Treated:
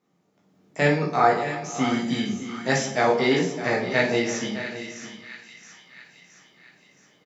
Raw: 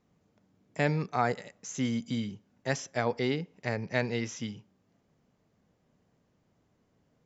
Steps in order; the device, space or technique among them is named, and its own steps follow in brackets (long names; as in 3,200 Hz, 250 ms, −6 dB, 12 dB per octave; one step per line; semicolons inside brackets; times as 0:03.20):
0:01.27–0:01.90: high-frequency loss of the air 78 metres
echo with a time of its own for lows and highs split 1,200 Hz, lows 159 ms, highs 670 ms, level −11.5 dB
single-tap delay 610 ms −13 dB
far laptop microphone (convolution reverb RT60 0.40 s, pre-delay 11 ms, DRR −2.5 dB; high-pass filter 180 Hz 12 dB per octave; automatic gain control gain up to 7.5 dB)
level −2 dB